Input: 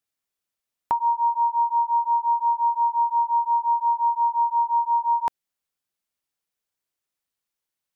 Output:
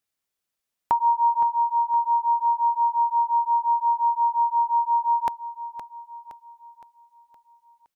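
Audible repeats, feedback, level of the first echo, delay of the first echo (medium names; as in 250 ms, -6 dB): 4, 48%, -11.0 dB, 516 ms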